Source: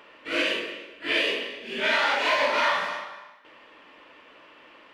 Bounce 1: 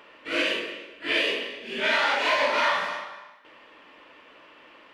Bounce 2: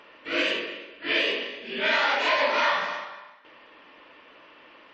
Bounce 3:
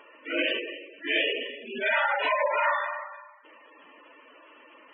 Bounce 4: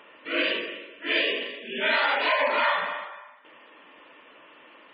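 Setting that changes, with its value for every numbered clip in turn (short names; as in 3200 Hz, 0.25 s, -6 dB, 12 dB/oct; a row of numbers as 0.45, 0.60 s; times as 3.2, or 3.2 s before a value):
spectral gate, under each frame's peak: -60, -35, -10, -20 dB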